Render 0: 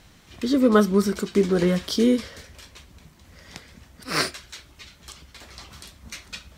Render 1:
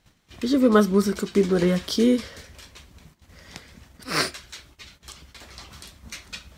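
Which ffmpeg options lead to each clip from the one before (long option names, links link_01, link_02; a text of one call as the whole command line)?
ffmpeg -i in.wav -af "agate=range=-13dB:threshold=-50dB:ratio=16:detection=peak" out.wav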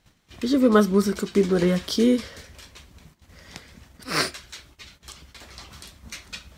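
ffmpeg -i in.wav -af anull out.wav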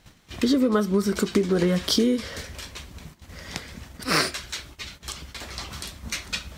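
ffmpeg -i in.wav -af "acompressor=threshold=-25dB:ratio=12,volume=7.5dB" out.wav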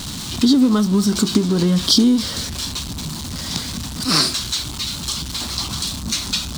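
ffmpeg -i in.wav -af "aeval=exprs='val(0)+0.5*0.0422*sgn(val(0))':channel_layout=same,equalizer=frequency=125:width_type=o:width=1:gain=6,equalizer=frequency=250:width_type=o:width=1:gain=8,equalizer=frequency=500:width_type=o:width=1:gain=-7,equalizer=frequency=1000:width_type=o:width=1:gain=5,equalizer=frequency=2000:width_type=o:width=1:gain=-8,equalizer=frequency=4000:width_type=o:width=1:gain=10,equalizer=frequency=8000:width_type=o:width=1:gain=6,volume=-1dB" out.wav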